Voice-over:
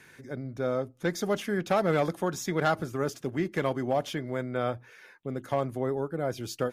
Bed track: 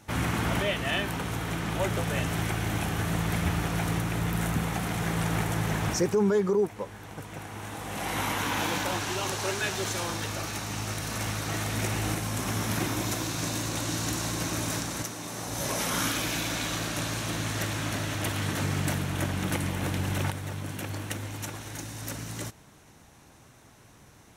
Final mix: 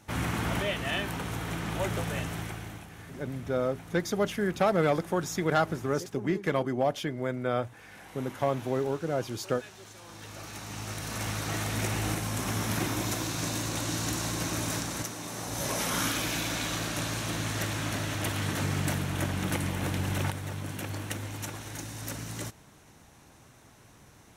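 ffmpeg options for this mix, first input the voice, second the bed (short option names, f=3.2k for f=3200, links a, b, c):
-filter_complex "[0:a]adelay=2900,volume=0.5dB[a];[1:a]volume=14.5dB,afade=t=out:st=2:d=0.87:silence=0.16788,afade=t=in:st=10.02:d=1.37:silence=0.141254[b];[a][b]amix=inputs=2:normalize=0"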